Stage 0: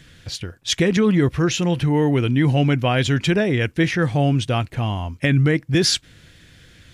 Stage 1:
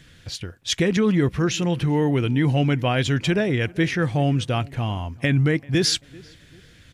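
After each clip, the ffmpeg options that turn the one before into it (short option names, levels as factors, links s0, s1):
-filter_complex "[0:a]asplit=2[s0][s1];[s1]adelay=389,lowpass=f=2200:p=1,volume=0.0708,asplit=2[s2][s3];[s3]adelay=389,lowpass=f=2200:p=1,volume=0.38,asplit=2[s4][s5];[s5]adelay=389,lowpass=f=2200:p=1,volume=0.38[s6];[s0][s2][s4][s6]amix=inputs=4:normalize=0,volume=0.75"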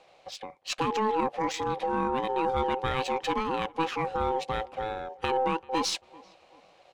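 -af "aeval=exprs='val(0)*sin(2*PI*650*n/s)':c=same,aeval=exprs='0.316*(cos(1*acos(clip(val(0)/0.316,-1,1)))-cos(1*PI/2))+0.0355*(cos(2*acos(clip(val(0)/0.316,-1,1)))-cos(2*PI/2))':c=same,adynamicsmooth=sensitivity=4.5:basefreq=6600,volume=0.562"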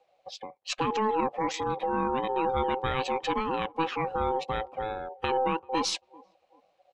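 -af "afftdn=nr=15:nf=-46"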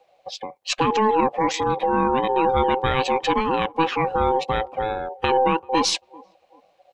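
-af "bandreject=f=1300:w=18,volume=2.51"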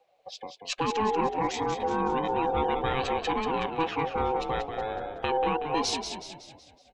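-filter_complex "[0:a]asplit=7[s0][s1][s2][s3][s4][s5][s6];[s1]adelay=186,afreqshift=-43,volume=0.447[s7];[s2]adelay=372,afreqshift=-86,volume=0.214[s8];[s3]adelay=558,afreqshift=-129,volume=0.102[s9];[s4]adelay=744,afreqshift=-172,volume=0.0495[s10];[s5]adelay=930,afreqshift=-215,volume=0.0237[s11];[s6]adelay=1116,afreqshift=-258,volume=0.0114[s12];[s0][s7][s8][s9][s10][s11][s12]amix=inputs=7:normalize=0,volume=0.398"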